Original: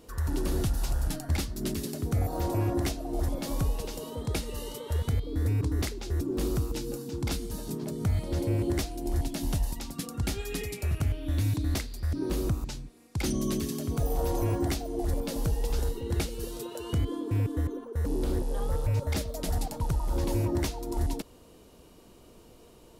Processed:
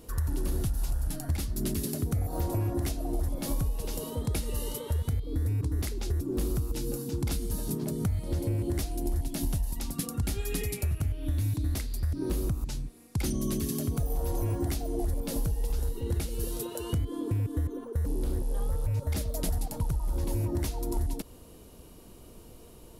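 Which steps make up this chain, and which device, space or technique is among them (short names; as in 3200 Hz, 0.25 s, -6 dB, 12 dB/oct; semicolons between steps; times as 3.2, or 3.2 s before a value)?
ASMR close-microphone chain (low shelf 180 Hz +7.5 dB; compressor, threshold -26 dBFS, peak gain reduction 9.5 dB; high shelf 10000 Hz +5 dB); bell 11000 Hz +6 dB 0.51 oct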